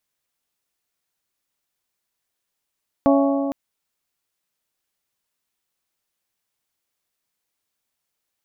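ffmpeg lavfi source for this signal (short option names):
-f lavfi -i "aevalsrc='0.211*pow(10,-3*t/2.64)*sin(2*PI*278*t)+0.15*pow(10,-3*t/2.144)*sin(2*PI*556*t)+0.106*pow(10,-3*t/2.03)*sin(2*PI*667.2*t)+0.075*pow(10,-3*t/1.899)*sin(2*PI*834*t)+0.0531*pow(10,-3*t/1.742)*sin(2*PI*1112*t)':d=0.46:s=44100"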